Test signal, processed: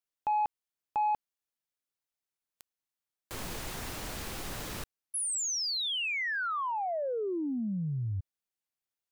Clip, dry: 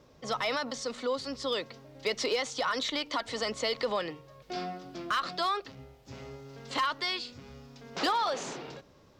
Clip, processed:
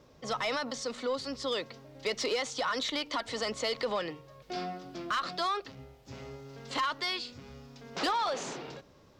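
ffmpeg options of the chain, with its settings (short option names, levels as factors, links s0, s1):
-af "asoftclip=type=tanh:threshold=0.075"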